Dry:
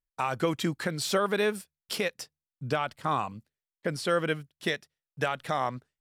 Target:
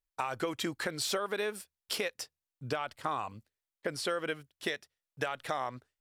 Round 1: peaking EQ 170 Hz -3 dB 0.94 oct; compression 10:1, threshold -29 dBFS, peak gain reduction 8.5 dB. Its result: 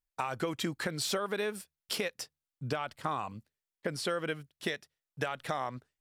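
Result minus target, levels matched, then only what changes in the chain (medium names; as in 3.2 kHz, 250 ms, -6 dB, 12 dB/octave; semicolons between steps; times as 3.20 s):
125 Hz band +5.0 dB
change: peaking EQ 170 Hz -10.5 dB 0.94 oct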